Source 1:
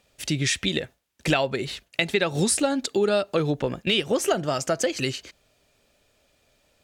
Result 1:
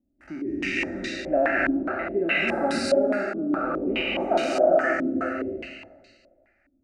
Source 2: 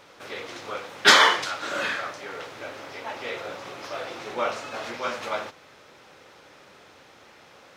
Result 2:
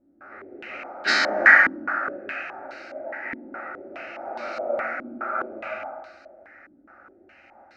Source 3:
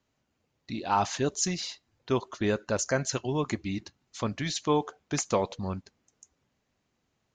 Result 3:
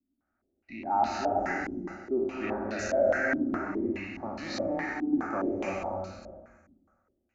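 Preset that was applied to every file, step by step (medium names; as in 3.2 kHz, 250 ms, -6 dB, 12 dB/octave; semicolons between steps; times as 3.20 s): spectral sustain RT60 1.63 s; static phaser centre 690 Hz, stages 8; gated-style reverb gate 380 ms rising, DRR -2.5 dB; step-sequenced low-pass 4.8 Hz 280–4100 Hz; trim -8.5 dB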